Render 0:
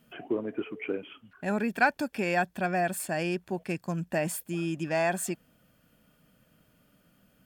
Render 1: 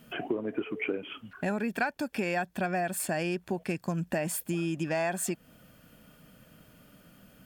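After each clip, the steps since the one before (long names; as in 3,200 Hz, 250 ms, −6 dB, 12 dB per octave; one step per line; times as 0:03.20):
downward compressor 4 to 1, threshold −37 dBFS, peak gain reduction 16.5 dB
level +8 dB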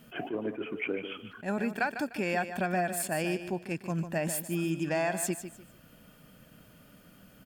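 on a send: repeating echo 150 ms, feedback 27%, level −10.5 dB
on the sum: level that may rise only so fast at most 250 dB per second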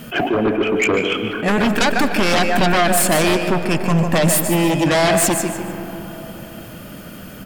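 sine wavefolder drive 12 dB, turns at −16.5 dBFS
comb and all-pass reverb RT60 3.9 s, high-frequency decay 0.3×, pre-delay 95 ms, DRR 8.5 dB
level +4 dB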